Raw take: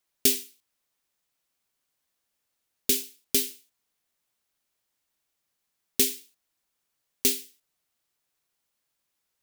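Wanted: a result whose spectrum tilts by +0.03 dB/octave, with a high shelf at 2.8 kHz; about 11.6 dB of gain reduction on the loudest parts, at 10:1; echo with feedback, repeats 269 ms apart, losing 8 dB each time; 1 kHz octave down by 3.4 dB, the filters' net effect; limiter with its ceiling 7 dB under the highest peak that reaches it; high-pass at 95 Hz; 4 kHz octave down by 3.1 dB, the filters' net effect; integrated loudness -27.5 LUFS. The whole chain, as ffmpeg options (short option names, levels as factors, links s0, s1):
-af "highpass=95,equalizer=f=1000:t=o:g=-5,highshelf=f=2800:g=3,equalizer=f=4000:t=o:g=-6.5,acompressor=threshold=0.0398:ratio=10,alimiter=limit=0.188:level=0:latency=1,aecho=1:1:269|538|807|1076|1345:0.398|0.159|0.0637|0.0255|0.0102,volume=3.55"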